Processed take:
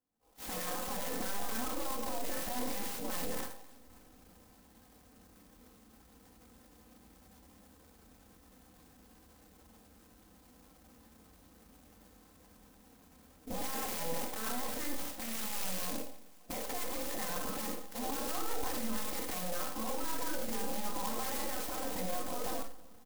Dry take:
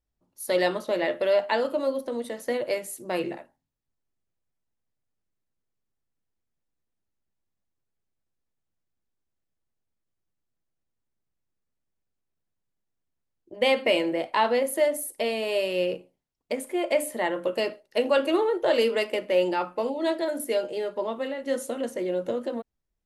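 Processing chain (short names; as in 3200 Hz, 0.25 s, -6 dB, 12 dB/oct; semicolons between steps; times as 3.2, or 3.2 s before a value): half-wave gain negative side -3 dB; recorder AGC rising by 46 dB/s; Bessel low-pass 3300 Hz, order 2; notch 550 Hz, Q 14; spectral gate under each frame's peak -10 dB weak; comb 3.9 ms, depth 94%; transient shaper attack -9 dB, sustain +7 dB; limiter -30 dBFS, peak gain reduction 15 dB; on a send: feedback echo 0.265 s, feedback 54%, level -22.5 dB; on the sum: Schroeder reverb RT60 0.43 s, combs from 28 ms, DRR 6 dB; clock jitter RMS 0.12 ms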